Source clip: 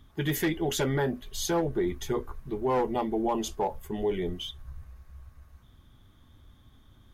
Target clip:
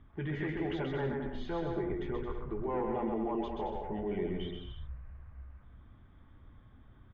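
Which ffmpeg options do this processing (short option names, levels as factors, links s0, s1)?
-filter_complex "[0:a]lowpass=f=2400:w=0.5412,lowpass=f=2400:w=1.3066,alimiter=level_in=1.5:limit=0.0631:level=0:latency=1:release=27,volume=0.668,asplit=2[s0][s1];[s1]aecho=0:1:130|221|284.7|329.3|360.5:0.631|0.398|0.251|0.158|0.1[s2];[s0][s2]amix=inputs=2:normalize=0,volume=0.794"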